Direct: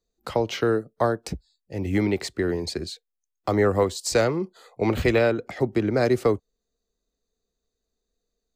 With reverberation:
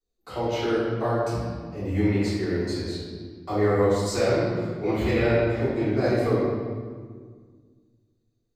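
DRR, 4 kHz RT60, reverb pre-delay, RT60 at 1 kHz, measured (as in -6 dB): -15.0 dB, 1.2 s, 3 ms, 1.6 s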